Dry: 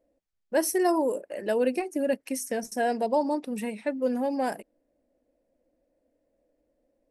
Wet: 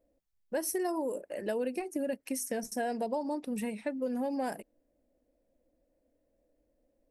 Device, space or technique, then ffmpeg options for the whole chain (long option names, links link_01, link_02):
ASMR close-microphone chain: -af "lowshelf=frequency=140:gain=8,acompressor=threshold=-26dB:ratio=6,highshelf=frequency=10000:gain=5.5,volume=-3.5dB"